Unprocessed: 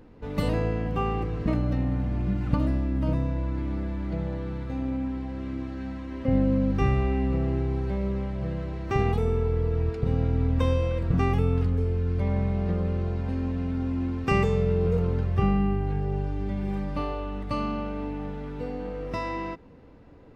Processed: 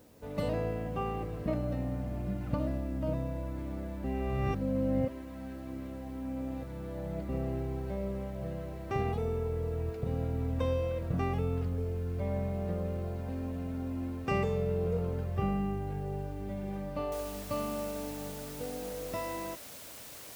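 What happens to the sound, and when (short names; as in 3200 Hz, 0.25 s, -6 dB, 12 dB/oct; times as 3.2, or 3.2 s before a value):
4.04–7.29 reverse
17.12 noise floor step -59 dB -40 dB
whole clip: HPF 56 Hz; bell 610 Hz +9 dB 0.48 oct; gain -8 dB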